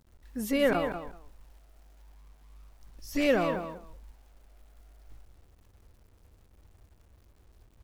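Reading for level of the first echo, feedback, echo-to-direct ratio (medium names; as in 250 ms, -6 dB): -8.5 dB, 16%, -8.5 dB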